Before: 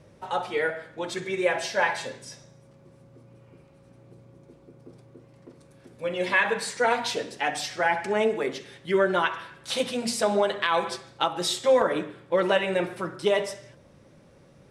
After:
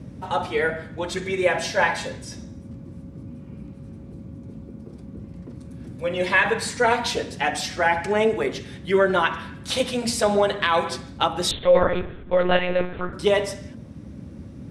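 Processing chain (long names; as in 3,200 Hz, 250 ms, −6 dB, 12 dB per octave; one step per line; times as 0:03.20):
noise in a band 59–270 Hz −42 dBFS
0:11.51–0:13.13: one-pitch LPC vocoder at 8 kHz 180 Hz
level +3.5 dB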